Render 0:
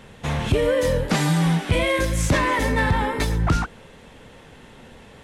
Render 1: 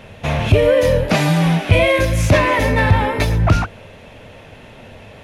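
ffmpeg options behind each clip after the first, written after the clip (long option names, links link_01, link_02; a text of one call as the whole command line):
ffmpeg -i in.wav -af "equalizer=frequency=100:width_type=o:width=0.33:gain=11,equalizer=frequency=630:width_type=o:width=0.33:gain=10,equalizer=frequency=2500:width_type=o:width=0.33:gain=7,equalizer=frequency=8000:width_type=o:width=0.33:gain=-8,volume=3.5dB" out.wav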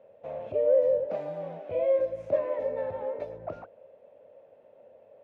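ffmpeg -i in.wav -af "bandpass=frequency=550:width_type=q:width=6.8:csg=0,volume=-5.5dB" out.wav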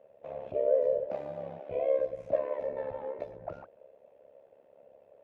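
ffmpeg -i in.wav -af "tremolo=f=69:d=0.788" out.wav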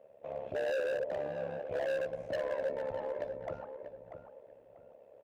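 ffmpeg -i in.wav -filter_complex "[0:a]asoftclip=type=hard:threshold=-30.5dB,asplit=2[link_01][link_02];[link_02]adelay=640,lowpass=frequency=1800:poles=1,volume=-8dB,asplit=2[link_03][link_04];[link_04]adelay=640,lowpass=frequency=1800:poles=1,volume=0.27,asplit=2[link_05][link_06];[link_06]adelay=640,lowpass=frequency=1800:poles=1,volume=0.27[link_07];[link_01][link_03][link_05][link_07]amix=inputs=4:normalize=0" out.wav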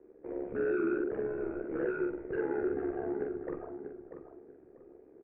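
ffmpeg -i in.wav -filter_complex "[0:a]highpass=frequency=180:width_type=q:width=0.5412,highpass=frequency=180:width_type=q:width=1.307,lowpass=frequency=2200:width_type=q:width=0.5176,lowpass=frequency=2200:width_type=q:width=0.7071,lowpass=frequency=2200:width_type=q:width=1.932,afreqshift=-170,asplit=2[link_01][link_02];[link_02]adelay=45,volume=-3dB[link_03];[link_01][link_03]amix=inputs=2:normalize=0,bandreject=frequency=145.3:width_type=h:width=4,bandreject=frequency=290.6:width_type=h:width=4,bandreject=frequency=435.9:width_type=h:width=4,bandreject=frequency=581.2:width_type=h:width=4,bandreject=frequency=726.5:width_type=h:width=4,bandreject=frequency=871.8:width_type=h:width=4,bandreject=frequency=1017.1:width_type=h:width=4,bandreject=frequency=1162.4:width_type=h:width=4,bandreject=frequency=1307.7:width_type=h:width=4,bandreject=frequency=1453:width_type=h:width=4,bandreject=frequency=1598.3:width_type=h:width=4,bandreject=frequency=1743.6:width_type=h:width=4,bandreject=frequency=1888.9:width_type=h:width=4,bandreject=frequency=2034.2:width_type=h:width=4,bandreject=frequency=2179.5:width_type=h:width=4,bandreject=frequency=2324.8:width_type=h:width=4,bandreject=frequency=2470.1:width_type=h:width=4,bandreject=frequency=2615.4:width_type=h:width=4,bandreject=frequency=2760.7:width_type=h:width=4,bandreject=frequency=2906:width_type=h:width=4,bandreject=frequency=3051.3:width_type=h:width=4,bandreject=frequency=3196.6:width_type=h:width=4,bandreject=frequency=3341.9:width_type=h:width=4,bandreject=frequency=3487.2:width_type=h:width=4,bandreject=frequency=3632.5:width_type=h:width=4,bandreject=frequency=3777.8:width_type=h:width=4,bandreject=frequency=3923.1:width_type=h:width=4,bandreject=frequency=4068.4:width_type=h:width=4" out.wav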